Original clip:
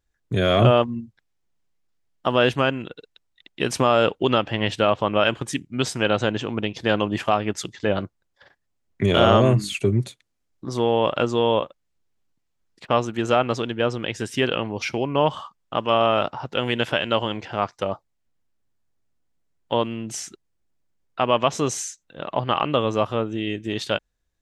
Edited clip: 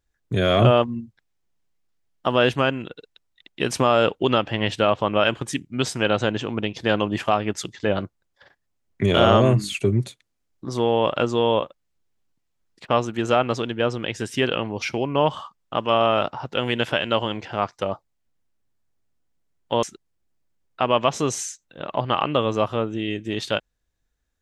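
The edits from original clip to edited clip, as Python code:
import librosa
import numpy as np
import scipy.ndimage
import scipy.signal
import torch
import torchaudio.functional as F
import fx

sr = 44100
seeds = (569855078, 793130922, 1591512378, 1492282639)

y = fx.edit(x, sr, fx.cut(start_s=19.83, length_s=0.39), tone=tone)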